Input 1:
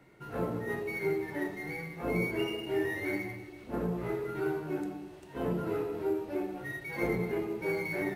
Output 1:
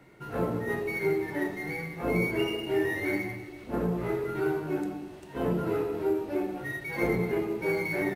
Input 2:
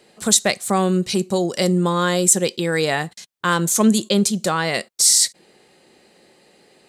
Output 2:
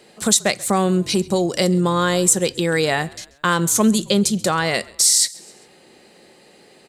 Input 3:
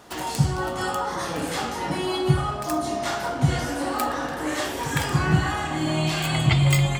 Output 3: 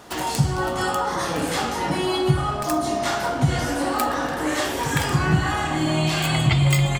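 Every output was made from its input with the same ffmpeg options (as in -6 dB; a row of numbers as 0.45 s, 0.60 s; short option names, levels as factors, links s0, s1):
-filter_complex "[0:a]acompressor=threshold=0.0631:ratio=1.5,asplit=2[s0][s1];[s1]asplit=3[s2][s3][s4];[s2]adelay=134,afreqshift=-48,volume=0.0708[s5];[s3]adelay=268,afreqshift=-96,volume=0.0331[s6];[s4]adelay=402,afreqshift=-144,volume=0.0157[s7];[s5][s6][s7]amix=inputs=3:normalize=0[s8];[s0][s8]amix=inputs=2:normalize=0,volume=1.58"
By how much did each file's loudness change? +4.0 LU, 0.0 LU, +2.0 LU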